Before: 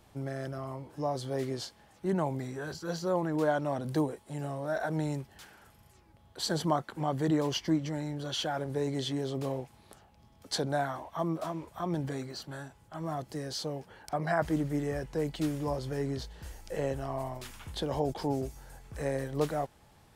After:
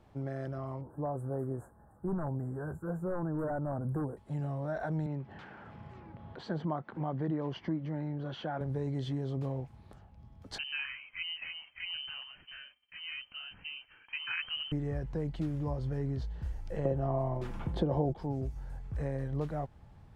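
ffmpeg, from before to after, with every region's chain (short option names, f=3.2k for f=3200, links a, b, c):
-filter_complex "[0:a]asettb=1/sr,asplit=3[a][b][c];[a]atrim=end=0.814[d];[b]atrim=start=0.81:end=4.17,asetpts=PTS-STARTPTS,afade=t=in:d=0.004:c=qsin,afade=t=out:st=3.356:d=0.004:c=qsin,highshelf=f=9k:g=11,aeval=exprs='0.0596*(abs(mod(val(0)/0.0596+3,4)-2)-1)':c=same,asuperstop=centerf=3700:order=12:qfactor=0.57[e];[c]atrim=start=4.166[f];[d][e]acrossfade=d=0.004:c1=hsin:c2=qsin[g];[g][f]acrossfade=d=0.004:c1=qsin:c2=hsin,asettb=1/sr,asplit=3[h][i][j];[h]atrim=end=5.064[k];[i]atrim=start=5.06:end=8.61,asetpts=PTS-STARTPTS,afade=t=in:d=0.004:c=qsin,afade=t=out:st=3.546:d=0.004:c=qsin,highpass=170,lowpass=2.8k,acompressor=mode=upward:threshold=-36dB:ratio=2.5:attack=3.2:release=140:knee=2.83:detection=peak[l];[j]atrim=start=8.606[m];[k][l]acrossfade=d=0.004:c1=hsin:c2=qsin[n];[n][m]acrossfade=d=0.004:c1=qsin:c2=hsin,asettb=1/sr,asplit=3[o][p][q];[o]atrim=end=10.584[r];[p]atrim=start=10.58:end=14.72,asetpts=PTS-STARTPTS,afade=t=in:d=0.004:c=qsin,afade=t=out:st=4.136:d=0.004:c=qsin,agate=range=-33dB:threshold=-53dB:ratio=3:release=100:detection=peak,lowpass=f=2.7k:t=q:w=0.5098,lowpass=f=2.7k:t=q:w=0.6013,lowpass=f=2.7k:t=q:w=0.9,lowpass=f=2.7k:t=q:w=2.563,afreqshift=-3200[s];[q]atrim=start=14.716[t];[r][s]acrossfade=d=0.004:c1=hsin:c2=qsin[u];[u][t]acrossfade=d=0.004:c1=qsin:c2=hsin,asettb=1/sr,asplit=3[v][w][x];[v]atrim=end=16.854[y];[w]atrim=start=16.85:end=18.15,asetpts=PTS-STARTPTS,afade=t=in:d=0.004:c=qsin,afade=t=out:st=1.296:d=0.004:c=qsin,equalizer=f=390:w=0.36:g=14.5,aecho=1:1:5.8:0.36,atrim=end_sample=57330[z];[x]atrim=start=18.146[aa];[y][z]acrossfade=d=0.004:c1=hsin:c2=qsin[ab];[ab][aa]acrossfade=d=0.004:c1=qsin:c2=hsin,lowpass=f=1.3k:p=1,asubboost=boost=2.5:cutoff=200,acompressor=threshold=-32dB:ratio=2.5"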